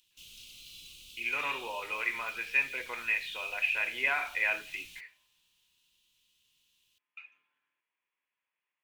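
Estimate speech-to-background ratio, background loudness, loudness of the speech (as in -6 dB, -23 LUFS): 17.0 dB, -48.5 LUFS, -31.5 LUFS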